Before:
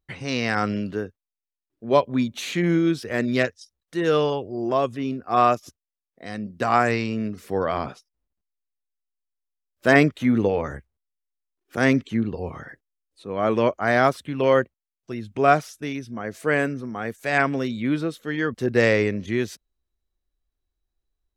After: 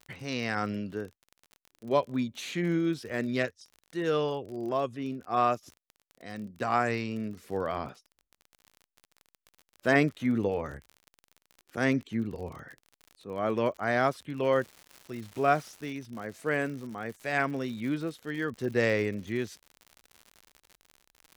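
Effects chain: crackle 37/s -31 dBFS, from 14.53 s 320/s, from 15.93 s 110/s; gain -7.5 dB

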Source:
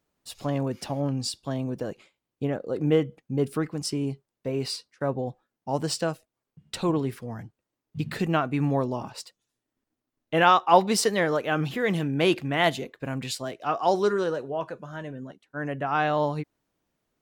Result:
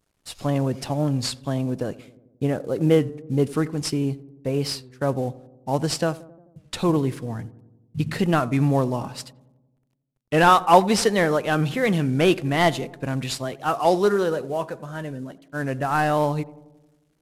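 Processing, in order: CVSD 64 kbps; low shelf 110 Hz +6.5 dB; darkening echo 89 ms, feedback 67%, low-pass 1100 Hz, level -18 dB; record warp 33 1/3 rpm, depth 100 cents; gain +3.5 dB

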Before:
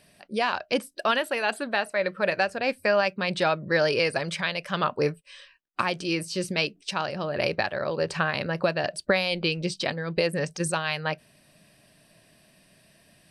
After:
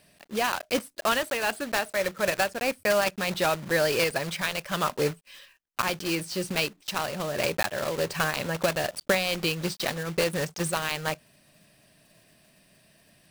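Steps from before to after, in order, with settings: block floating point 3-bit; gain -1.5 dB

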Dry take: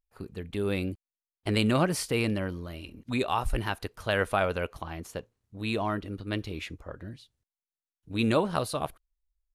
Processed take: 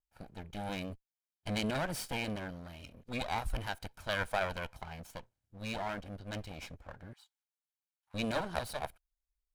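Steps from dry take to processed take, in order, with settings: minimum comb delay 1.3 ms; 7.13–8.14 elliptic high-pass 810 Hz, stop band 40 dB; gain -6 dB

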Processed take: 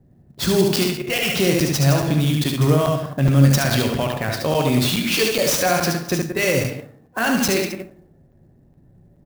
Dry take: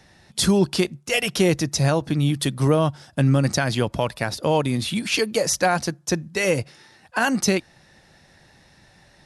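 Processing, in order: reverse delay 0.102 s, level -10 dB; high shelf 5100 Hz +8.5 dB; notch 890 Hz, Q 12; limiter -13 dBFS, peak gain reduction 8 dB; non-linear reverb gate 0.31 s falling, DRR 7.5 dB; low-pass opened by the level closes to 300 Hz, open at -18 dBFS; echo 72 ms -4 dB; crackling interface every 0.42 s, samples 256, zero, from 0.34; clock jitter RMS 0.021 ms; gain +3 dB

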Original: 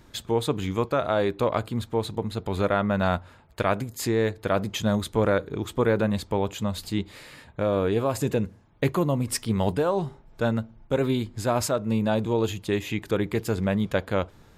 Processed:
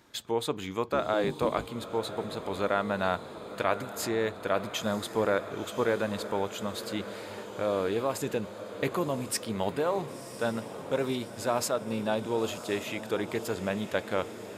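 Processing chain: 0.87–1.67 octaver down 1 oct, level +4 dB; HPF 370 Hz 6 dB/oct; on a send: diffused feedback echo 1.03 s, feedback 65%, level -12 dB; on the sum: gain -2.5 dB

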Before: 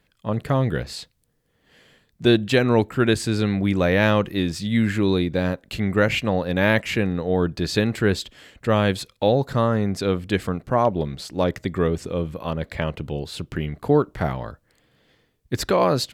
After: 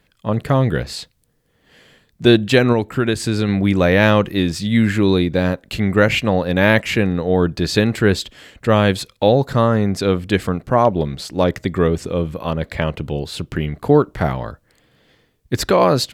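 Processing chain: 2.72–3.49 compressor 4:1, threshold -19 dBFS, peak gain reduction 6 dB; gain +5 dB

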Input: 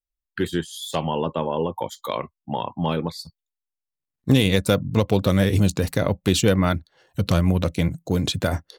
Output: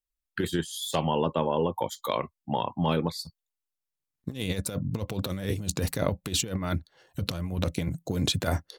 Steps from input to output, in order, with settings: bell 14000 Hz +3 dB 1.5 oct; negative-ratio compressor -22 dBFS, ratio -0.5; gain -4.5 dB

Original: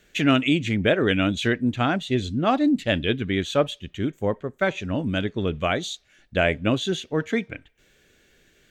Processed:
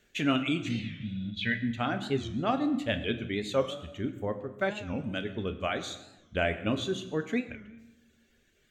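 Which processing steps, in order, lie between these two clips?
reverb removal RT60 0.96 s; 0.73–1.27 spectral repair 240–6000 Hz both; 0.8–1.56 EQ curve 220 Hz 0 dB, 360 Hz -16 dB, 660 Hz -3 dB, 1200 Hz -15 dB, 1900 Hz +7 dB, 4800 Hz -2 dB, 7000 Hz -22 dB; on a send at -7 dB: reverb RT60 1.1 s, pre-delay 6 ms; on the sum: record warp 45 rpm, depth 160 cents; gain -7.5 dB

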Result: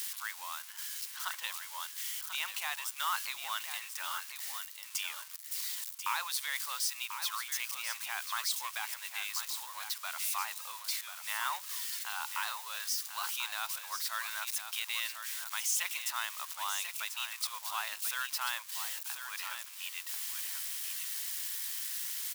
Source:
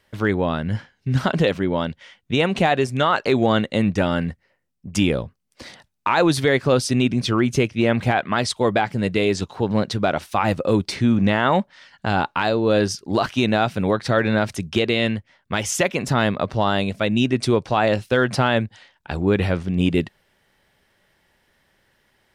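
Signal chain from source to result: switching spikes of -19 dBFS; elliptic high-pass 1000 Hz, stop band 70 dB; bell 1700 Hz -4.5 dB 1.8 oct; echo 1.04 s -8.5 dB; gain -9 dB

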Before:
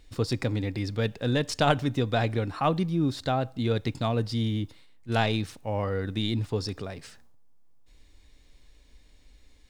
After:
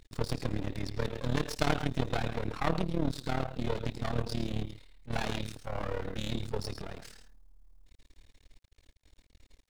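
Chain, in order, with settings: non-linear reverb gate 0.15 s rising, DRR 11 dB; half-wave rectifier; AM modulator 37 Hz, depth 70%; gain +2.5 dB

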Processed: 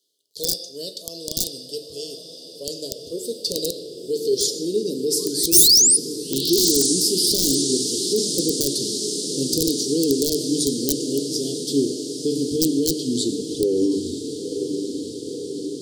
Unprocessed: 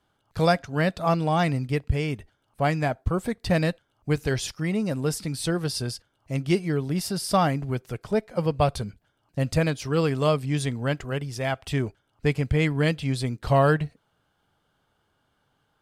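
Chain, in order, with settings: tape stop at the end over 2.94 s; bell 460 Hz +4 dB 0.44 oct; on a send at -6.5 dB: reverb RT60 0.95 s, pre-delay 6 ms; on the sum: painted sound rise, 5.19–5.97, 990–10000 Hz -18 dBFS; resonant high shelf 2400 Hz +7.5 dB, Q 3; diffused feedback echo 0.95 s, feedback 73%, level -10.5 dB; high-pass sweep 690 Hz -> 300 Hz, 2.1–5.92; in parallel at -0.5 dB: negative-ratio compressor -17 dBFS, ratio -0.5; on the sum: notches 50/100/150/200/250/300 Hz; wrapped overs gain 2.5 dB; elliptic band-stop 390–4500 Hz, stop band 40 dB; gain -4 dB

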